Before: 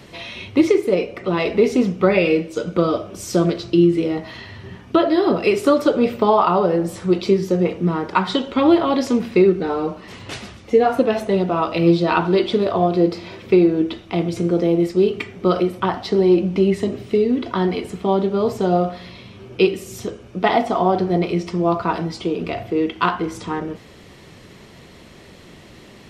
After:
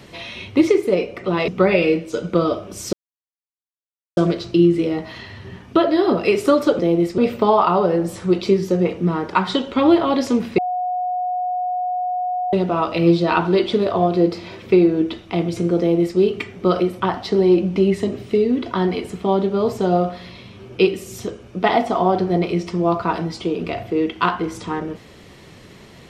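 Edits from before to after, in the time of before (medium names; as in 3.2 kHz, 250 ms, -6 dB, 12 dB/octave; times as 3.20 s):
1.48–1.91 s: delete
3.36 s: insert silence 1.24 s
9.38–11.33 s: bleep 727 Hz -19.5 dBFS
14.59–14.98 s: copy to 5.98 s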